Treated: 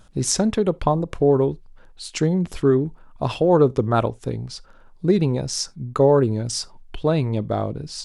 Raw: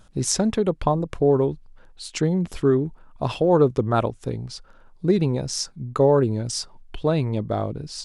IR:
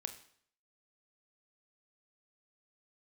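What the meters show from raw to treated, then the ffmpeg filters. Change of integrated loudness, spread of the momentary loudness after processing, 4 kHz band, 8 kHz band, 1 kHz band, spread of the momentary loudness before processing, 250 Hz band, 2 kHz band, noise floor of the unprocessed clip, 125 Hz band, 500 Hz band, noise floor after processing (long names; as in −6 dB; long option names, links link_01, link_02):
+1.5 dB, 13 LU, +1.5 dB, +1.5 dB, +1.5 dB, 13 LU, +1.5 dB, +1.5 dB, −52 dBFS, +1.5 dB, +1.5 dB, −50 dBFS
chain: -filter_complex "[0:a]asplit=2[link_01][link_02];[1:a]atrim=start_sample=2205,atrim=end_sample=3969[link_03];[link_02][link_03]afir=irnorm=-1:irlink=0,volume=-12dB[link_04];[link_01][link_04]amix=inputs=2:normalize=0"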